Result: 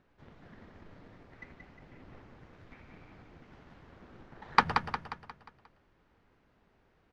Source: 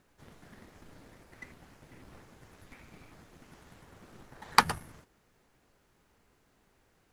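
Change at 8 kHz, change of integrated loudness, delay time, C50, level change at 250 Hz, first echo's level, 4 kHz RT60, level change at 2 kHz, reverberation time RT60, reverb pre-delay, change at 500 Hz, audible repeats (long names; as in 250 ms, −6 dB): below −15 dB, −3.0 dB, 178 ms, no reverb audible, +1.0 dB, −6.0 dB, no reverb audible, −1.0 dB, no reverb audible, no reverb audible, +0.5 dB, 5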